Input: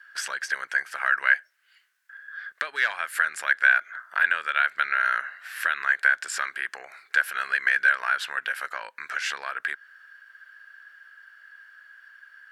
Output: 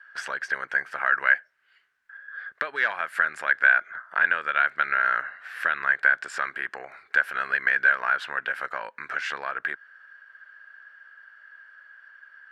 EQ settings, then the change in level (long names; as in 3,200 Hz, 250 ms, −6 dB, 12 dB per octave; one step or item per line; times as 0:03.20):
low-pass filter 1,100 Hz 6 dB per octave
low-shelf EQ 250 Hz +8.5 dB
+5.0 dB